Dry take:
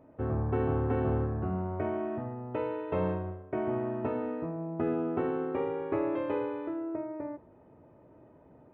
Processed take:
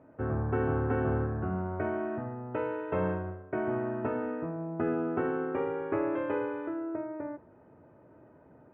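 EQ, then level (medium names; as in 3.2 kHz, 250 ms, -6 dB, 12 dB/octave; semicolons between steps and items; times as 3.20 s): high-pass 62 Hz; low-pass 3.1 kHz 24 dB/octave; peaking EQ 1.5 kHz +8 dB 0.36 oct; 0.0 dB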